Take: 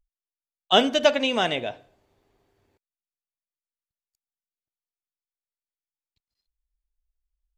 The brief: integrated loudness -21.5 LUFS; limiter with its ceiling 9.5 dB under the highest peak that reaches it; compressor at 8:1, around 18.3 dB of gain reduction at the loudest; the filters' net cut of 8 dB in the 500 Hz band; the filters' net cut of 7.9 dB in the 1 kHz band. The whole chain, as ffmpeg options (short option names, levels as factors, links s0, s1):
-af "equalizer=f=500:t=o:g=-7,equalizer=f=1000:t=o:g=-8.5,acompressor=threshold=0.0158:ratio=8,volume=11.9,alimiter=limit=0.299:level=0:latency=1"